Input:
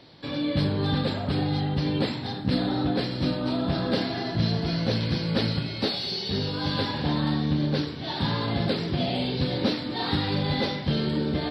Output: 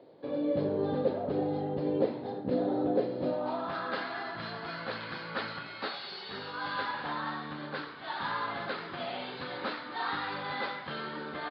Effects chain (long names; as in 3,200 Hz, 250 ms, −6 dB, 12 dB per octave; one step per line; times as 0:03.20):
band-pass filter sweep 490 Hz → 1,300 Hz, 0:03.17–0:03.76
downsampling to 11,025 Hz
level +4.5 dB